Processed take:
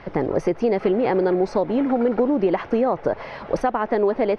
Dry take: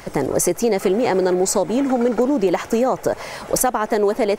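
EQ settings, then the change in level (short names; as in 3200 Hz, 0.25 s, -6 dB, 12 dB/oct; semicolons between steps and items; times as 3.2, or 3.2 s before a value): running mean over 6 samples; air absorption 130 m; -1.5 dB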